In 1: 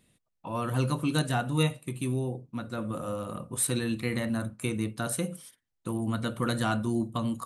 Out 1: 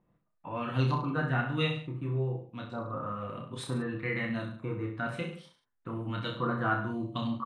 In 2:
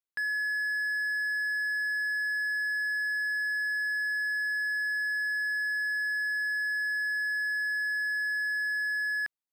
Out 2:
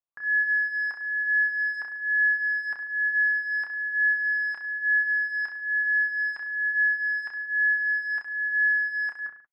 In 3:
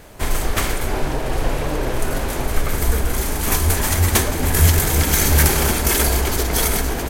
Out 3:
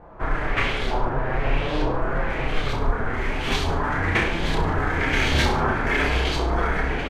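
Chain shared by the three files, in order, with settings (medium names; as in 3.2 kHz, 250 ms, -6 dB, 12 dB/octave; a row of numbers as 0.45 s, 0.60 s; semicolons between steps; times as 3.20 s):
LFO low-pass saw up 1.1 Hz 920–4100 Hz; flange 0.46 Hz, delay 5.7 ms, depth 2.6 ms, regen -35%; reverse bouncing-ball echo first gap 30 ms, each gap 1.1×, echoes 5; trim -1.5 dB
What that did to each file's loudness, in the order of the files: -2.5 LU, +4.5 LU, -5.0 LU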